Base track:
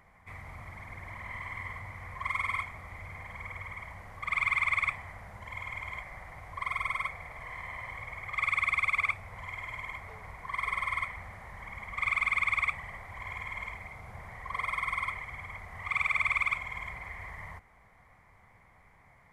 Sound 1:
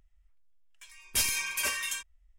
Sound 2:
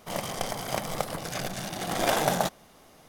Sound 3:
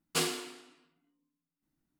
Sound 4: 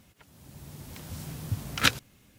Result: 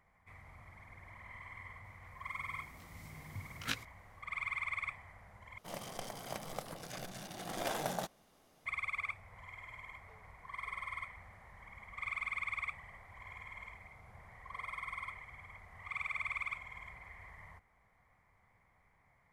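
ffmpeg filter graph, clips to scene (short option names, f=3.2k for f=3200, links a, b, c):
-filter_complex "[0:a]volume=-10.5dB[a];[4:a]flanger=delay=17.5:depth=3.2:speed=0.95[b];[a]asplit=2[c][d];[c]atrim=end=5.584[e];[2:a]atrim=end=3.08,asetpts=PTS-STARTPTS,volume=-12.5dB[f];[d]atrim=start=8.656[g];[b]atrim=end=2.38,asetpts=PTS-STARTPTS,volume=-12dB,afade=t=in:d=0.004:c=hsin,afade=t=out:st=2.376:d=0.004:c=hsin,adelay=1840[h];[e][f]acrossfade=d=0.004:c1=hsin:c2=hsin[i];[i][g]acrossfade=d=0.004:c1=hsin:c2=hsin[j];[j][h]amix=inputs=2:normalize=0"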